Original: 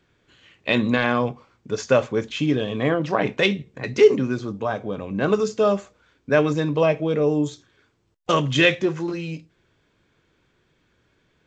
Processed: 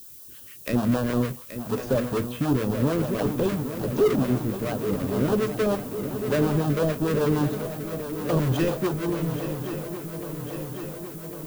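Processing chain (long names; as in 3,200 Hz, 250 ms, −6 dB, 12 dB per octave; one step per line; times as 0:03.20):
each half-wave held at its own peak
de-essing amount 95%
in parallel at +1 dB: brickwall limiter −16.5 dBFS, peak gain reduction 11 dB
on the sum: two-band tremolo in antiphase 6.7 Hz, depth 70%, crossover 460 Hz
background noise violet −39 dBFS
auto-filter notch square 5.3 Hz 810–2,100 Hz
on a send: feedback echo with a long and a short gap by turns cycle 1,103 ms, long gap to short 3 to 1, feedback 67%, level −10.5 dB
on the sum: level −6 dB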